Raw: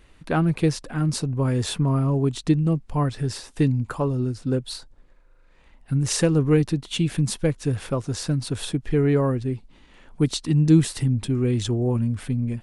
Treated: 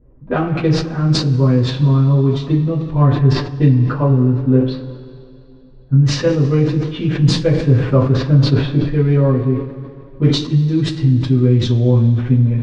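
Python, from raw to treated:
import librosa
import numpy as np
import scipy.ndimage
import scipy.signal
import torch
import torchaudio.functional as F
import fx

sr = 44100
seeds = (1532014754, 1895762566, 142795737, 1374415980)

y = fx.wiener(x, sr, points=9)
y = scipy.signal.sosfilt(scipy.signal.butter(4, 5100.0, 'lowpass', fs=sr, output='sos'), y)
y = fx.low_shelf(y, sr, hz=220.0, db=4.0)
y = fx.env_lowpass(y, sr, base_hz=410.0, full_db=-16.5)
y = fx.rider(y, sr, range_db=10, speed_s=0.5)
y = fx.rev_double_slope(y, sr, seeds[0], early_s=0.23, late_s=2.7, knee_db=-19, drr_db=-9.0)
y = fx.sustainer(y, sr, db_per_s=84.0)
y = y * librosa.db_to_amplitude(-5.0)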